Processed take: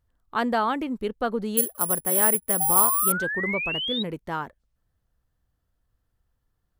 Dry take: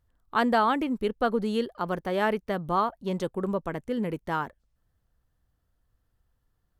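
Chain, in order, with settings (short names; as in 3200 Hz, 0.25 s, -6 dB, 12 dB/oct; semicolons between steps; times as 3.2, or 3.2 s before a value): 2.6–4.03 painted sound rise 750–3900 Hz -28 dBFS; 1.57–3.12 careless resampling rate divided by 4×, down filtered, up zero stuff; gain -1 dB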